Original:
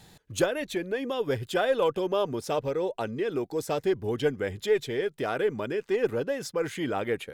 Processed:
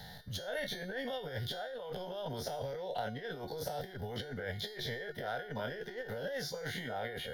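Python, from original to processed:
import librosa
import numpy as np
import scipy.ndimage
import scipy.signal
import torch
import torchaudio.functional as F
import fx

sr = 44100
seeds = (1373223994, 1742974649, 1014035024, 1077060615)

y = fx.spec_dilate(x, sr, span_ms=60)
y = fx.over_compress(y, sr, threshold_db=-29.0, ratio=-1.0)
y = fx.fixed_phaser(y, sr, hz=1700.0, stages=8)
y = fx.comb_fb(y, sr, f0_hz=360.0, decay_s=0.56, harmonics='all', damping=0.0, mix_pct=80)
y = fx.band_squash(y, sr, depth_pct=40)
y = y * 10.0 ** (6.0 / 20.0)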